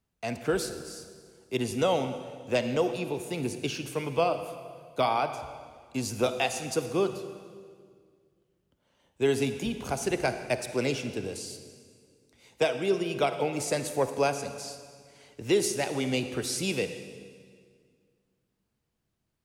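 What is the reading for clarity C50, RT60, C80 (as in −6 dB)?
9.5 dB, 1.9 s, 10.5 dB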